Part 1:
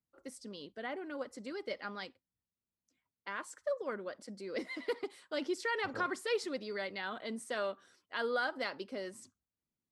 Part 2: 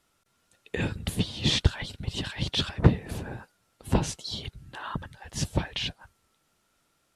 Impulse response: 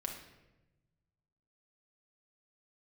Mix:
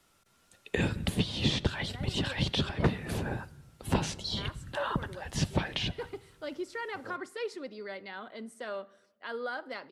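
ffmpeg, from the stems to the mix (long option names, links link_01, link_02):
-filter_complex "[0:a]equalizer=frequency=6600:width=0.46:gain=-4.5,adelay=1100,volume=-3dB,asplit=2[link_01][link_02];[link_02]volume=-15dB[link_03];[1:a]volume=2.5dB,asplit=3[link_04][link_05][link_06];[link_05]volume=-14.5dB[link_07];[link_06]apad=whole_len=485644[link_08];[link_01][link_08]sidechaincompress=threshold=-25dB:ratio=8:attack=6.7:release=523[link_09];[2:a]atrim=start_sample=2205[link_10];[link_03][link_07]amix=inputs=2:normalize=0[link_11];[link_11][link_10]afir=irnorm=-1:irlink=0[link_12];[link_09][link_04][link_12]amix=inputs=3:normalize=0,acrossover=split=120|1000|4600[link_13][link_14][link_15][link_16];[link_13]acompressor=threshold=-35dB:ratio=4[link_17];[link_14]acompressor=threshold=-27dB:ratio=4[link_18];[link_15]acompressor=threshold=-34dB:ratio=4[link_19];[link_16]acompressor=threshold=-46dB:ratio=4[link_20];[link_17][link_18][link_19][link_20]amix=inputs=4:normalize=0"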